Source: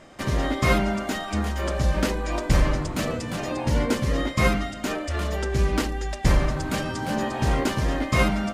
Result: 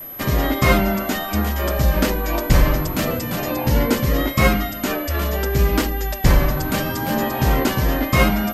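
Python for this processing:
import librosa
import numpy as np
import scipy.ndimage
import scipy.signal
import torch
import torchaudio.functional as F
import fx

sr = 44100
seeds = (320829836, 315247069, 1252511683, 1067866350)

y = fx.vibrato(x, sr, rate_hz=0.74, depth_cents=34.0)
y = y + 10.0 ** (-37.0 / 20.0) * np.sin(2.0 * np.pi * 12000.0 * np.arange(len(y)) / sr)
y = y * librosa.db_to_amplitude(5.0)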